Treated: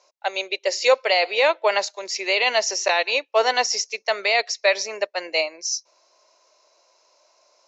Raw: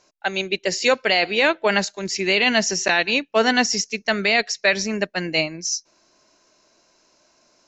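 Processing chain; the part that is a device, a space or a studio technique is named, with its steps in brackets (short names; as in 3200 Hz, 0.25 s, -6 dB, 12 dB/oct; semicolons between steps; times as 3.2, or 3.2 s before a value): phone speaker on a table (speaker cabinet 480–6900 Hz, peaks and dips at 540 Hz +5 dB, 980 Hz +4 dB, 1600 Hz -8 dB, 3000 Hz -3 dB)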